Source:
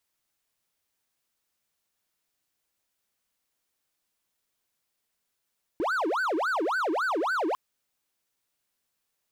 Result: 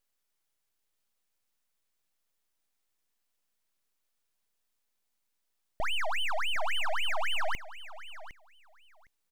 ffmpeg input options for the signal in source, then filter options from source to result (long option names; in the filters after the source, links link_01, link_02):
-f lavfi -i "aevalsrc='0.075*(1-4*abs(mod((923.5*t-616.5/(2*PI*3.6)*sin(2*PI*3.6*t))+0.25,1)-0.5))':duration=1.75:sample_rate=44100"
-af "aeval=exprs='abs(val(0))':channel_layout=same,aecho=1:1:759|1518:0.178|0.0285"